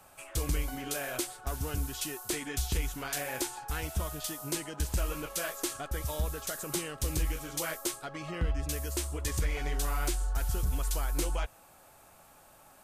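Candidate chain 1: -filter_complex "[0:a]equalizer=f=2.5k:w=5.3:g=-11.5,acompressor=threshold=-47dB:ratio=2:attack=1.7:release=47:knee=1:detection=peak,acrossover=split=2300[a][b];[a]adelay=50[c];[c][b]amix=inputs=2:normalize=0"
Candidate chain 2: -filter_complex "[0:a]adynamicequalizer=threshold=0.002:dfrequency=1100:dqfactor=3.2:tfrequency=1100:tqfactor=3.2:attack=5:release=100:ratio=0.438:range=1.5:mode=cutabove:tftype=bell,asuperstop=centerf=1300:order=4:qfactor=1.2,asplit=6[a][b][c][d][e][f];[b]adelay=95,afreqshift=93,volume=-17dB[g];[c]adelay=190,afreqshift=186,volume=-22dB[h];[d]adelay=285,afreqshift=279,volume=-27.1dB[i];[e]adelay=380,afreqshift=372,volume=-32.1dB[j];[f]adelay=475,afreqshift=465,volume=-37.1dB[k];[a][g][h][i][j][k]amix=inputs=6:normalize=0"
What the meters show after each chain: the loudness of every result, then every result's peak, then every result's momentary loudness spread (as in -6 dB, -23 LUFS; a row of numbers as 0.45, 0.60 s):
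-44.0, -34.5 LUFS; -29.0, -19.0 dBFS; 4, 4 LU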